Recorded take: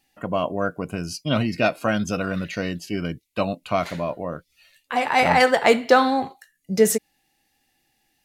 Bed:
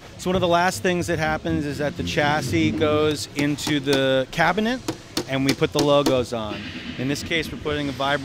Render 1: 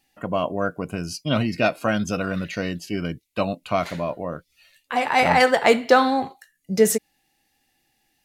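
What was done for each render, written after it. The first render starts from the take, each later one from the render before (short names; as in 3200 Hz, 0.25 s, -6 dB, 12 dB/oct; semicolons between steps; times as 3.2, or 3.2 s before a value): 5.47–5.88 short-mantissa float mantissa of 8-bit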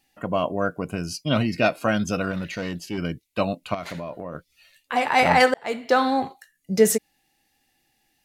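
2.31–2.98 tube stage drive 22 dB, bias 0.2; 3.74–4.35 compressor, threshold -28 dBFS; 5.54–6.18 fade in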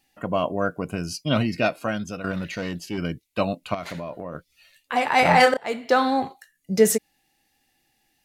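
1.41–2.24 fade out, to -10 dB; 5.22–5.65 doubler 29 ms -6 dB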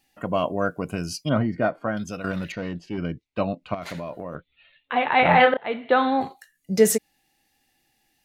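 1.29–1.97 polynomial smoothing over 41 samples; 2.52–3.82 tape spacing loss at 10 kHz 23 dB; 4.35–6.21 steep low-pass 3900 Hz 96 dB/oct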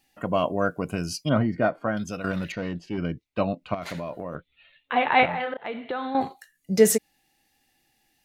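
5.25–6.15 compressor 4:1, threshold -28 dBFS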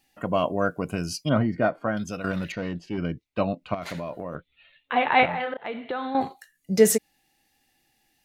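nothing audible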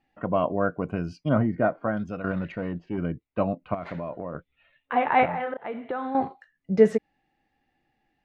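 LPF 1700 Hz 12 dB/oct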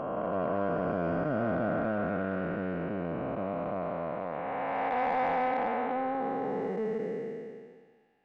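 time blur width 0.94 s; overdrive pedal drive 14 dB, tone 1400 Hz, clips at -18 dBFS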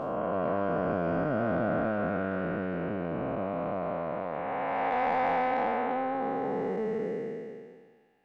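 spectral trails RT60 0.99 s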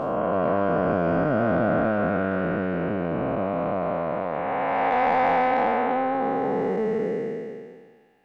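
gain +6.5 dB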